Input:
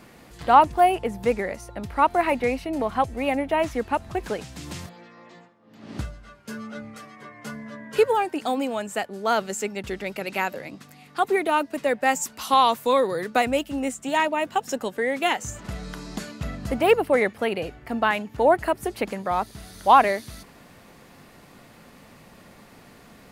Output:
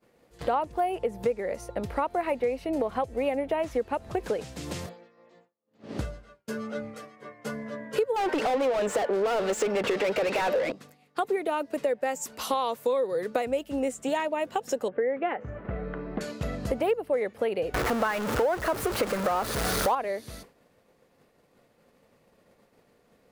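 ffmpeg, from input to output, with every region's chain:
ffmpeg -i in.wav -filter_complex "[0:a]asettb=1/sr,asplit=3[link_01][link_02][link_03];[link_01]atrim=end=8.164[link_04];[link_02]atrim=start=8.16:end=10.72,asetpts=PTS-STARTPTS,afade=type=in:duration=0.004:curve=qsin,afade=type=out:start_time=2.556:duration=0.004:curve=qsin,highpass=170,highshelf=frequency=5300:gain=-10,asplit=2[link_05][link_06];[link_06]highpass=frequency=720:poles=1,volume=36dB,asoftclip=type=tanh:threshold=-11dB[link_07];[link_05][link_07]amix=inputs=2:normalize=0,lowpass=frequency=3200:poles=1,volume=-6dB[link_08];[link_03]atrim=start=10.716[link_09];[link_04][link_08]acrossfade=duration=0.004:curve1=hsin:curve2=qsin[link_10];[link_10][link_09]acrossfade=duration=0.004:curve1=qsin:curve2=hsin,asettb=1/sr,asplit=3[link_11][link_12][link_13];[link_11]atrim=end=14.884[link_14];[link_12]atrim=start=14.88:end=16.21,asetpts=PTS-STARTPTS,afade=type=in:duration=0.004:curve=qsin,afade=type=out:start_time=1.326:duration=0.004:curve=qsin,lowpass=frequency=2100:width=0.5412,lowpass=frequency=2100:width=1.3066,bandreject=frequency=930:width=9.9[link_15];[link_13]atrim=start=16.206[link_16];[link_14][link_15]acrossfade=duration=0.004:curve1=hsin:curve2=qsin[link_17];[link_17][link_16]acrossfade=duration=0.004:curve1=qsin:curve2=hsin,asettb=1/sr,asplit=3[link_18][link_19][link_20];[link_18]atrim=end=17.744[link_21];[link_19]atrim=start=17.74:end=19.95,asetpts=PTS-STARTPTS,afade=type=in:duration=0.004:curve=qsin,afade=type=out:start_time=2.206:duration=0.004:curve=qsin,aeval=exprs='val(0)+0.5*0.106*sgn(val(0))':channel_layout=same,equalizer=frequency=1300:width_type=o:width=0.94:gain=8.5[link_22];[link_20]atrim=start=19.946[link_23];[link_21][link_22]acrossfade=duration=0.004:curve1=hsin:curve2=qsin[link_24];[link_24][link_23]acrossfade=duration=0.004:curve1=qsin:curve2=hsin,agate=range=-33dB:threshold=-38dB:ratio=3:detection=peak,equalizer=frequency=490:width=1.9:gain=10.5,acompressor=threshold=-24dB:ratio=5,volume=-1dB" out.wav

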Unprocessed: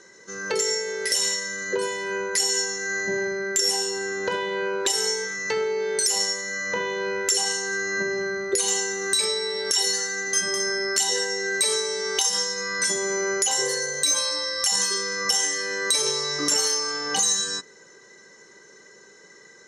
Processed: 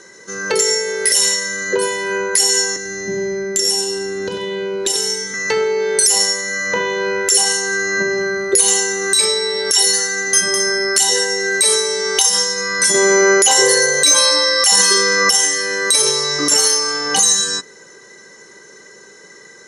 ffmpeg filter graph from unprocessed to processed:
ffmpeg -i in.wav -filter_complex "[0:a]asettb=1/sr,asplit=3[link_01][link_02][link_03];[link_01]atrim=end=2.764[link_04];[link_02]atrim=start=2.76:end=5.34,asetpts=PTS-STARTPTS,afade=type=in:duration=0.004:curve=qsin,afade=type=out:start_time=2.576:duration=0.004:curve=qsin,highshelf=frequency=5800:gain=-7,acrossover=split=380|3000[link_05][link_06][link_07];[link_06]acompressor=threshold=-39dB:ratio=6:attack=3.2:release=140:knee=2.83:detection=peak[link_08];[link_05][link_08][link_07]amix=inputs=3:normalize=0,aecho=1:1:92:0.422,atrim=end_sample=113778[link_09];[link_03]atrim=start=5.336[link_10];[link_04][link_09]acrossfade=duration=0.004:curve1=hsin:curve2=qsin[link_11];[link_11][link_10]acrossfade=duration=0.004:curve1=qsin:curve2=hsin,asettb=1/sr,asplit=3[link_12][link_13][link_14];[link_12]atrim=end=12.944[link_15];[link_13]atrim=start=12.94:end=15.3,asetpts=PTS-STARTPTS,afade=type=in:duration=0.004:curve=qsin,afade=type=out:start_time=2.356:duration=0.004:curve=qsin,highpass=170,highshelf=frequency=7600:gain=-7.5,acontrast=62[link_16];[link_14]atrim=start=15.296[link_17];[link_15][link_16]acrossfade=duration=0.004:curve1=hsin:curve2=qsin[link_18];[link_18][link_17]acrossfade=duration=0.004:curve1=qsin:curve2=hsin,equalizer=frequency=10000:width_type=o:width=0.24:gain=12,alimiter=level_in=9dB:limit=-1dB:release=50:level=0:latency=1,volume=-1dB" out.wav

